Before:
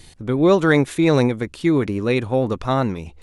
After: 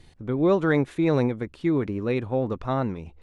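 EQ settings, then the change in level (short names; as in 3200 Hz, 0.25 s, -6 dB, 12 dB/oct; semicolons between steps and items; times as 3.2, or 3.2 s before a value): LPF 1900 Hz 6 dB/oct; -5.5 dB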